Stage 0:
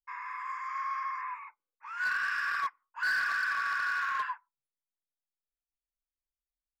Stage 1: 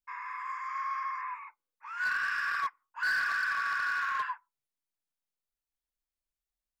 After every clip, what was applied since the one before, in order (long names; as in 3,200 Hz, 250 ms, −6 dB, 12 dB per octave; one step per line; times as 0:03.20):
low-shelf EQ 180 Hz +3 dB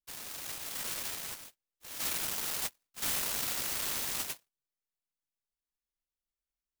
short delay modulated by noise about 5,200 Hz, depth 0.41 ms
level −3.5 dB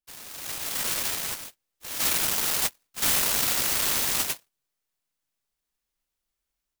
automatic gain control gain up to 9.5 dB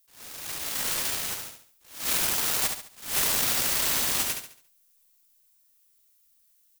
background noise violet −64 dBFS
on a send: repeating echo 70 ms, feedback 38%, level −6 dB
on the sum: level that may rise only so fast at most 130 dB per second
level −1.5 dB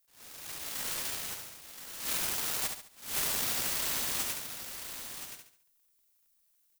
surface crackle 64 per second −57 dBFS
single-tap delay 1,024 ms −9.5 dB
level −7 dB